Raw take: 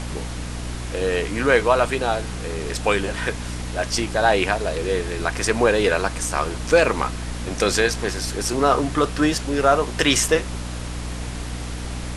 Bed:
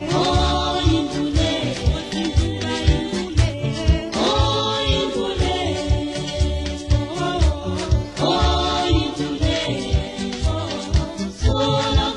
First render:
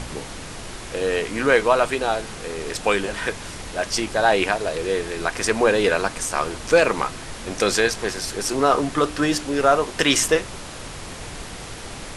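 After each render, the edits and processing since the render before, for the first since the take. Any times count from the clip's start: de-hum 60 Hz, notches 5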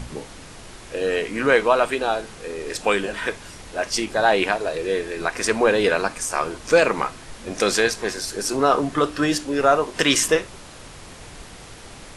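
noise print and reduce 6 dB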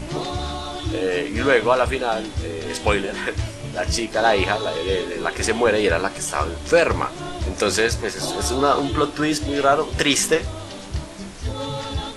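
add bed -9.5 dB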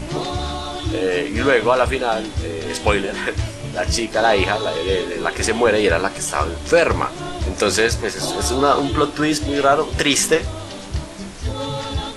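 trim +2.5 dB; peak limiter -3 dBFS, peak gain reduction 2.5 dB

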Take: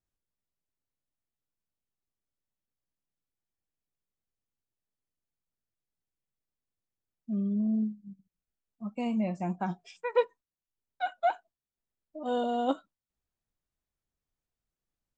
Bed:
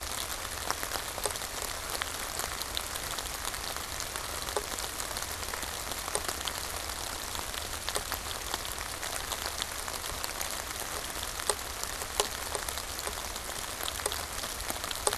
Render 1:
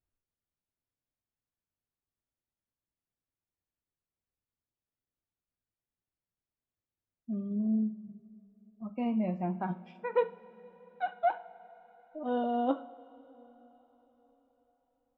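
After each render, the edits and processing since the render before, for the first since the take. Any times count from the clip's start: distance through air 430 m; two-slope reverb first 0.45 s, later 4.7 s, from -18 dB, DRR 10 dB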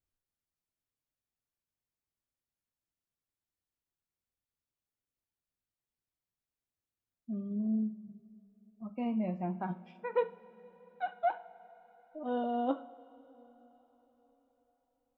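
trim -2.5 dB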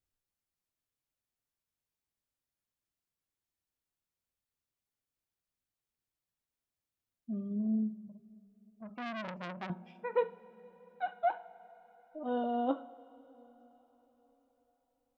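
8.09–9.70 s: transformer saturation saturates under 2 kHz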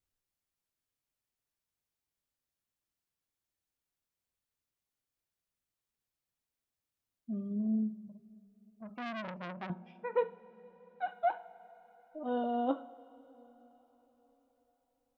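9.20–11.07 s: distance through air 120 m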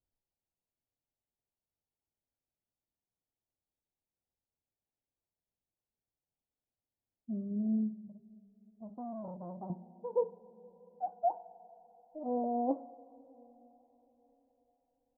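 steep low-pass 910 Hz 48 dB/octave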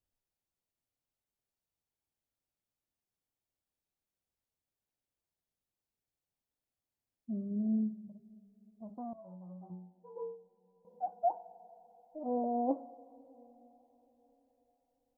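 9.13–10.85 s: inharmonic resonator 90 Hz, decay 0.5 s, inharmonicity 0.002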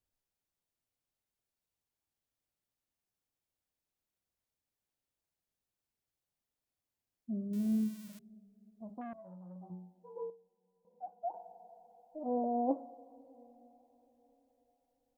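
7.53–8.19 s: zero-crossing glitches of -38 dBFS; 9.01–9.56 s: transformer saturation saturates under 550 Hz; 10.30–11.34 s: gain -8 dB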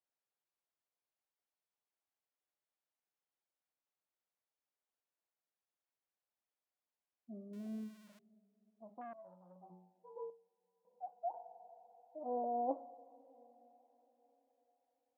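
high-pass 790 Hz 12 dB/octave; tilt EQ -4.5 dB/octave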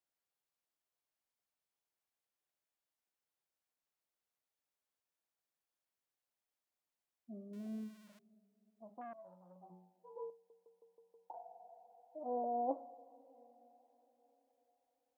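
10.34 s: stutter in place 0.16 s, 6 plays

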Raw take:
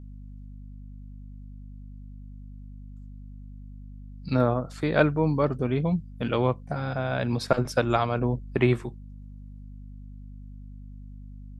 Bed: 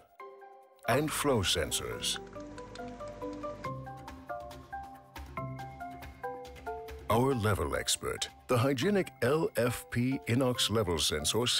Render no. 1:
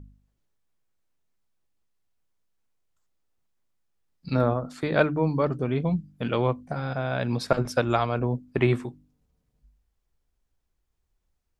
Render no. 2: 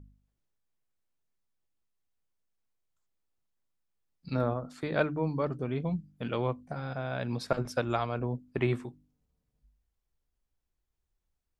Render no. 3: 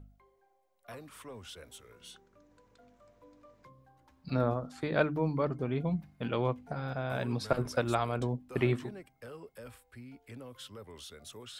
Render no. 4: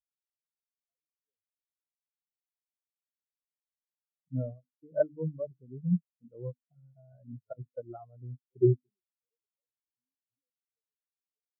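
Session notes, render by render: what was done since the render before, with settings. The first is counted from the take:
de-hum 50 Hz, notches 6
trim -6.5 dB
add bed -18.5 dB
spectral contrast expander 4:1

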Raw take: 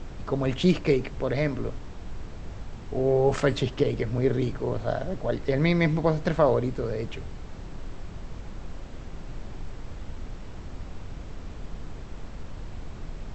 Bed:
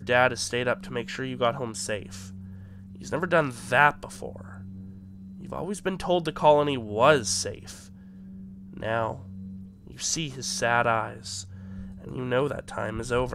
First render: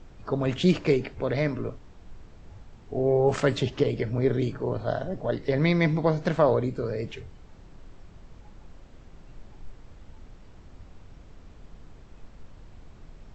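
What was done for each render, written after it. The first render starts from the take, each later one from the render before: noise print and reduce 10 dB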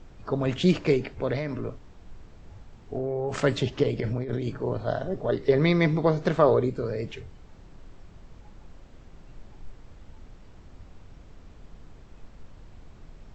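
1.36–3.42 s: compression, threshold -25 dBFS; 3.99–4.49 s: compressor with a negative ratio -29 dBFS; 5.04–6.70 s: small resonant body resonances 400/1200/3600 Hz, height 8 dB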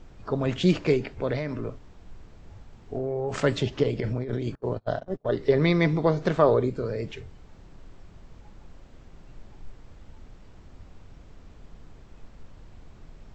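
4.55–5.36 s: gate -30 dBFS, range -33 dB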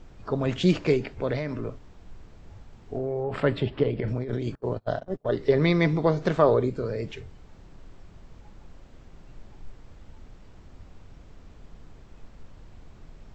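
3.23–4.08 s: boxcar filter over 7 samples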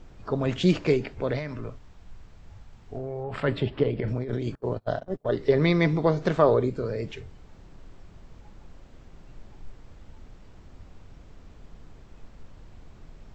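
1.39–3.48 s: peaking EQ 350 Hz -6 dB 1.8 oct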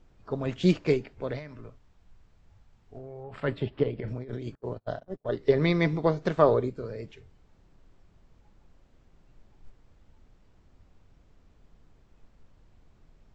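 upward expansion 1.5:1, over -38 dBFS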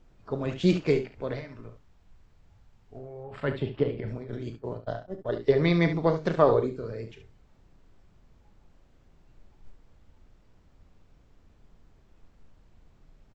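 early reflections 36 ms -12 dB, 70 ms -10.5 dB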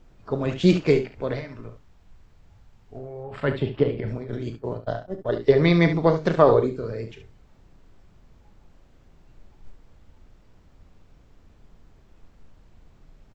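trim +5 dB; peak limiter -2 dBFS, peak gain reduction 1 dB

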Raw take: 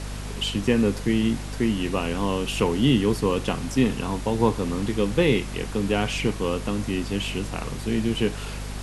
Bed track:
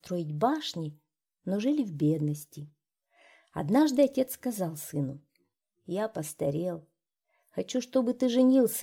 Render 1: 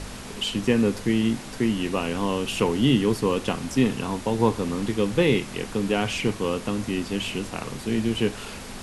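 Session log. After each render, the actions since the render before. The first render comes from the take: de-hum 50 Hz, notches 3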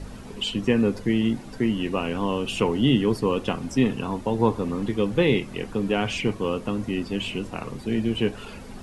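noise reduction 11 dB, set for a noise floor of -38 dBFS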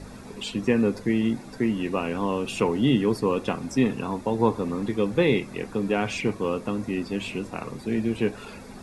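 bass shelf 76 Hz -10 dB; band-stop 3 kHz, Q 6.1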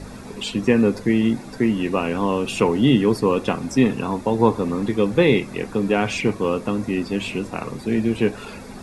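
trim +5 dB

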